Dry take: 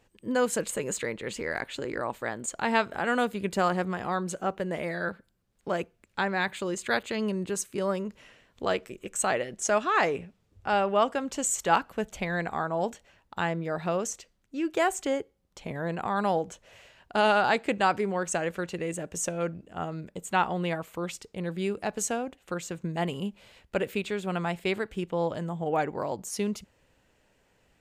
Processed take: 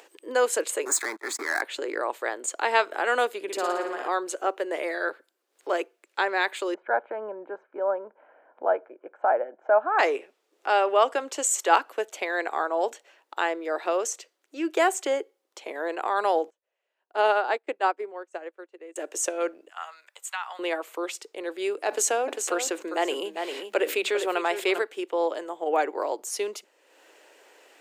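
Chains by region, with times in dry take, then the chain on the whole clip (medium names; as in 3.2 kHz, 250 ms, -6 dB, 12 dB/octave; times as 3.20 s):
0.85–1.62 s: gate -39 dBFS, range -21 dB + waveshaping leveller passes 3 + static phaser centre 1.2 kHz, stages 4
3.42–4.08 s: bass shelf 170 Hz +10 dB + compression 2:1, threshold -31 dBFS + flutter echo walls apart 9.7 m, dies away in 0.85 s
6.74–9.99 s: low-pass 1.3 kHz 24 dB/octave + comb 1.3 ms, depth 63%
16.50–18.96 s: treble shelf 2.3 kHz -10.5 dB + upward expansion 2.5:1, over -42 dBFS
19.69–20.59 s: high-pass 1 kHz 24 dB/octave + compression 5:1, threshold -31 dBFS
21.88–24.82 s: hum notches 50/100/150/200/250/300 Hz + delay 398 ms -12 dB + level flattener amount 50%
whole clip: steep high-pass 320 Hz 48 dB/octave; upward compressor, threshold -48 dBFS; trim +3.5 dB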